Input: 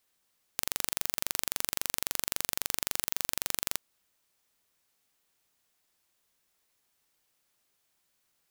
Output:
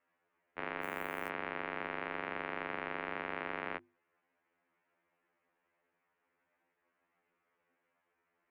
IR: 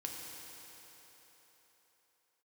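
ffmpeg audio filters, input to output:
-filter_complex "[0:a]highpass=f=440:t=q:w=0.5412,highpass=f=440:t=q:w=1.307,lowpass=f=2.4k:t=q:w=0.5176,lowpass=f=2.4k:t=q:w=0.7071,lowpass=f=2.4k:t=q:w=1.932,afreqshift=-140,aemphasis=mode=reproduction:type=riaa,bandreject=f=50:t=h:w=6,bandreject=f=100:t=h:w=6,bandreject=f=150:t=h:w=6,bandreject=f=200:t=h:w=6,bandreject=f=250:t=h:w=6,bandreject=f=300:t=h:w=6,bandreject=f=350:t=h:w=6,bandreject=f=400:t=h:w=6,asettb=1/sr,asplit=3[a][b][c];[a]atrim=end=0.814[d];[b]atrim=start=0.81:end=1.29,asetpts=PTS-STARTPTS,afade=t=in:d=0.004:c=qsin,afade=t=out:st=0.476:d=0.004:c=qsin,acrusher=bits=8:mode=log:mix=0:aa=0.000001[e];[c]atrim=start=1.286[f];[d][e]acrossfade=d=0.004:c1=hsin:c2=qsin[g];[g][f]acrossfade=d=0.004:c1=qsin:c2=hsin,crystalizer=i=3.5:c=0,afftfilt=real='re*2*eq(mod(b,4),0)':imag='im*2*eq(mod(b,4),0)':win_size=2048:overlap=0.75,volume=5dB"

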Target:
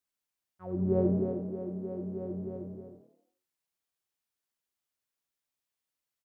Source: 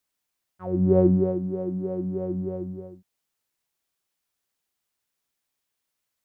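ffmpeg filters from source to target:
-filter_complex "[0:a]asplit=6[a][b][c][d][e][f];[b]adelay=87,afreqshift=36,volume=-10dB[g];[c]adelay=174,afreqshift=72,volume=-16.6dB[h];[d]adelay=261,afreqshift=108,volume=-23.1dB[i];[e]adelay=348,afreqshift=144,volume=-29.7dB[j];[f]adelay=435,afreqshift=180,volume=-36.2dB[k];[a][g][h][i][j][k]amix=inputs=6:normalize=0,volume=-8.5dB"

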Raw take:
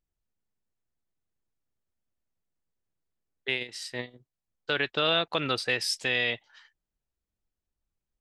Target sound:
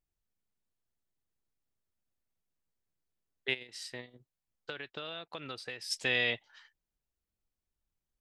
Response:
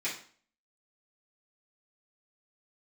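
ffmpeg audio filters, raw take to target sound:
-filter_complex "[0:a]asplit=3[a][b][c];[a]afade=t=out:st=3.53:d=0.02[d];[b]acompressor=threshold=-37dB:ratio=6,afade=t=in:st=3.53:d=0.02,afade=t=out:st=5.9:d=0.02[e];[c]afade=t=in:st=5.9:d=0.02[f];[d][e][f]amix=inputs=3:normalize=0,volume=-2.5dB"

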